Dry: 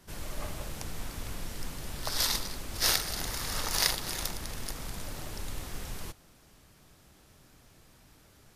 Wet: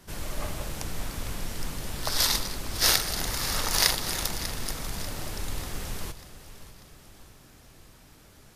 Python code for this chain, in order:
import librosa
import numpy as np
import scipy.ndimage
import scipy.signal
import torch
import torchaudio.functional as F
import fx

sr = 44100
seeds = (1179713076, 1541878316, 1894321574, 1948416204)

y = fx.echo_feedback(x, sr, ms=592, feedback_pct=50, wet_db=-14.5)
y = y * librosa.db_to_amplitude(4.5)